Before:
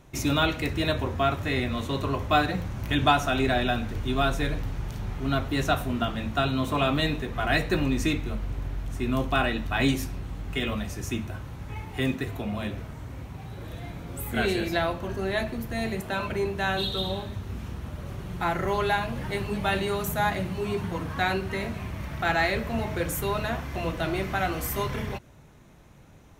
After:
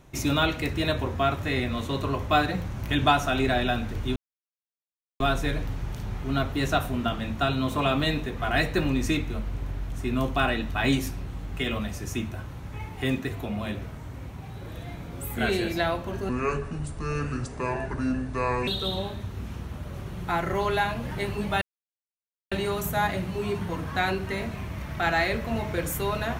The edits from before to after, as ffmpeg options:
-filter_complex "[0:a]asplit=5[s0][s1][s2][s3][s4];[s0]atrim=end=4.16,asetpts=PTS-STARTPTS,afade=t=out:st=4.156:d=0.004:c=hsin,apad=pad_dur=1.04[s5];[s1]atrim=start=4.16:end=15.254,asetpts=PTS-STARTPTS,afade=t=in:d=0.004:c=hsin[s6];[s2]atrim=start=15.25:end=16.8,asetpts=PTS-STARTPTS,asetrate=28665,aresample=44100[s7];[s3]atrim=start=16.796:end=19.74,asetpts=PTS-STARTPTS,afade=t=out:st=2.94:d=0.004:c=hsin,apad=pad_dur=0.9[s8];[s4]atrim=start=19.74,asetpts=PTS-STARTPTS,afade=t=in:d=0.004:c=hsin[s9];[s5][s6]concat=n=2:v=0:a=1[s10];[s10][s7]acrossfade=d=0.004:c1=hsin:c2=hsin[s11];[s8][s9]concat=n=2:v=0:a=1[s12];[s11][s12]acrossfade=d=0.004:c1=hsin:c2=hsin"

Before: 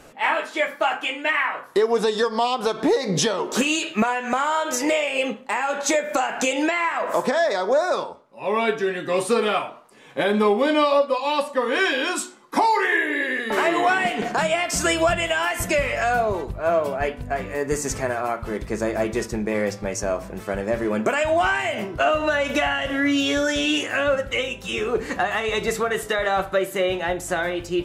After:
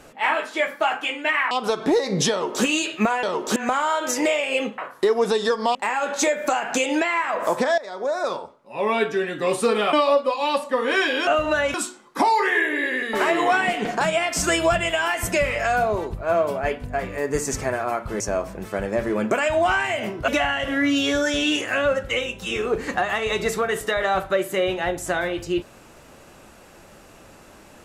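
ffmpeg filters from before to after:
-filter_complex "[0:a]asplit=12[s0][s1][s2][s3][s4][s5][s6][s7][s8][s9][s10][s11];[s0]atrim=end=1.512[s12];[s1]atrim=start=2.478:end=4.202[s13];[s2]atrim=start=3.278:end=3.612[s14];[s3]atrim=start=4.198:end=5.422[s15];[s4]atrim=start=1.508:end=2.482[s16];[s5]atrim=start=5.418:end=7.45,asetpts=PTS-STARTPTS,afade=t=out:st=2.028:d=0.004:c=hsin:silence=0.133352[s17];[s6]atrim=start=7.45:end=9.602,asetpts=PTS-STARTPTS,afade=t=in:d=0.65:silence=0.133352[s18];[s7]atrim=start=10.768:end=12.112[s19];[s8]atrim=start=22.028:end=22.502[s20];[s9]atrim=start=12.108:end=18.572[s21];[s10]atrim=start=19.948:end=22.032[s22];[s11]atrim=start=22.498[s23];[s12][s13]acrossfade=d=0.004:c1=hsin:c2=hsin[s24];[s24][s14]acrossfade=d=0.004:c1=hsin:c2=hsin[s25];[s25][s15]acrossfade=d=0.004:c1=hsin:c2=hsin[s26];[s26][s16]acrossfade=d=0.004:c1=hsin:c2=hsin[s27];[s17][s18]concat=n=2:v=0:a=1[s28];[s27][s28]acrossfade=d=0.004:c1=hsin:c2=hsin[s29];[s29][s19]acrossfade=d=0.004:c1=hsin:c2=hsin[s30];[s30][s20]acrossfade=d=0.004:c1=hsin:c2=hsin[s31];[s31][s21]acrossfade=d=0.004:c1=hsin:c2=hsin[s32];[s32][s22]acrossfade=d=0.004:c1=hsin:c2=hsin[s33];[s33][s23]acrossfade=d=0.004:c1=hsin:c2=hsin"

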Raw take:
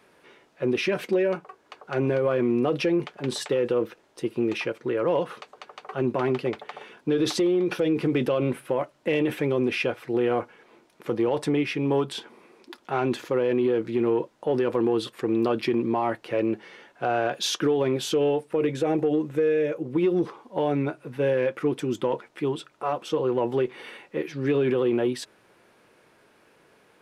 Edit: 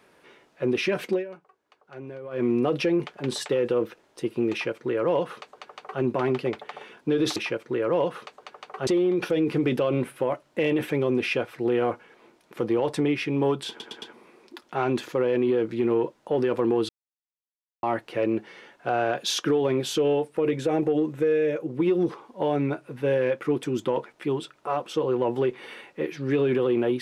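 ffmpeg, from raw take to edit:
-filter_complex "[0:a]asplit=10[s0][s1][s2][s3][s4][s5][s6][s7][s8][s9];[s0]atrim=end=1.25,asetpts=PTS-STARTPTS,afade=t=out:st=1.12:d=0.13:silence=0.177828[s10];[s1]atrim=start=1.25:end=2.31,asetpts=PTS-STARTPTS,volume=0.178[s11];[s2]atrim=start=2.31:end=7.362,asetpts=PTS-STARTPTS,afade=t=in:d=0.13:silence=0.177828[s12];[s3]atrim=start=4.508:end=6.022[s13];[s4]atrim=start=7.358:end=12.292[s14];[s5]atrim=start=12.178:end=12.292[s15];[s6]atrim=start=12.178:end=12.292[s16];[s7]atrim=start=12.178:end=15.05,asetpts=PTS-STARTPTS,afade=t=out:st=2.868:d=0.004:c=hsin[s17];[s8]atrim=start=15.05:end=15.99,asetpts=PTS-STARTPTS,volume=0[s18];[s9]atrim=start=15.99,asetpts=PTS-STARTPTS,afade=t=in:d=0.004:c=hsin[s19];[s10][s11][s12]concat=n=3:v=0:a=1[s20];[s20][s13]acrossfade=d=0.004:c1=hsin:c2=hsin[s21];[s21][s14]acrossfade=d=0.004:c1=hsin:c2=hsin[s22];[s22][s15]acrossfade=d=0.004:c1=hsin:c2=hsin[s23];[s23][s16]acrossfade=d=0.004:c1=hsin:c2=hsin[s24];[s17][s18][s19]concat=n=3:v=0:a=1[s25];[s24][s25]acrossfade=d=0.004:c1=hsin:c2=hsin"

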